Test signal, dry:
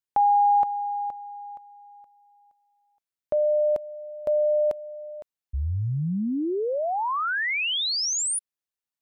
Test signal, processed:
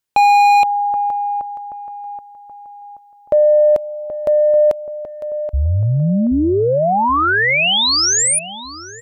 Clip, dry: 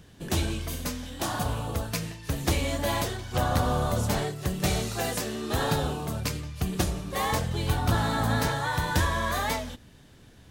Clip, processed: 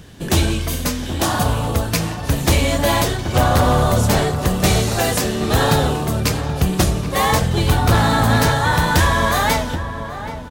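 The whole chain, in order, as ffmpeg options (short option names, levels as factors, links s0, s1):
-filter_complex "[0:a]acontrast=52,asplit=2[s0][s1];[s1]adelay=778,lowpass=f=1500:p=1,volume=0.316,asplit=2[s2][s3];[s3]adelay=778,lowpass=f=1500:p=1,volume=0.45,asplit=2[s4][s5];[s5]adelay=778,lowpass=f=1500:p=1,volume=0.45,asplit=2[s6][s7];[s7]adelay=778,lowpass=f=1500:p=1,volume=0.45,asplit=2[s8][s9];[s9]adelay=778,lowpass=f=1500:p=1,volume=0.45[s10];[s0][s2][s4][s6][s8][s10]amix=inputs=6:normalize=0,aeval=exprs='0.251*(abs(mod(val(0)/0.251+3,4)-2)-1)':c=same,volume=1.78"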